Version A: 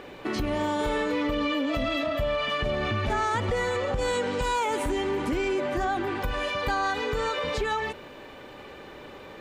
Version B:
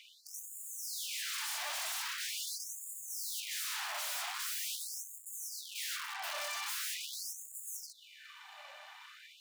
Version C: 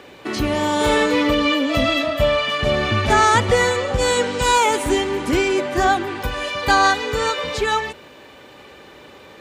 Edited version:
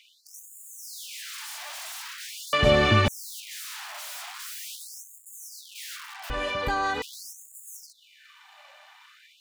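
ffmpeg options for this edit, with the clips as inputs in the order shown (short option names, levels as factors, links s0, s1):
-filter_complex "[1:a]asplit=3[s0][s1][s2];[s0]atrim=end=2.532[s3];[2:a]atrim=start=2.528:end=3.082[s4];[s1]atrim=start=3.078:end=6.302[s5];[0:a]atrim=start=6.298:end=7.022[s6];[s2]atrim=start=7.018[s7];[s3][s4]acrossfade=d=0.004:c1=hsin:c2=hsin[s8];[s8][s5]acrossfade=d=0.004:c1=hsin:c2=hsin[s9];[s9][s6]acrossfade=d=0.004:c1=hsin:c2=hsin[s10];[s10][s7]acrossfade=d=0.004:c1=hsin:c2=hsin"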